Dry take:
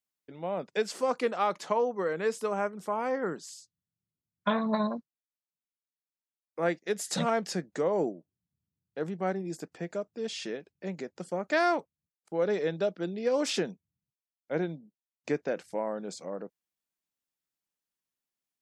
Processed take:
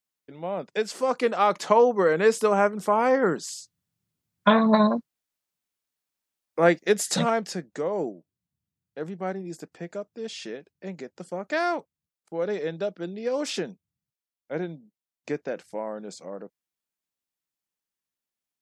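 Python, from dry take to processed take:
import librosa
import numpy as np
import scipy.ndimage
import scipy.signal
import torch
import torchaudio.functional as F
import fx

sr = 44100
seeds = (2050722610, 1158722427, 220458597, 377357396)

y = fx.gain(x, sr, db=fx.line((0.93, 2.5), (1.79, 9.5), (6.92, 9.5), (7.58, 0.0)))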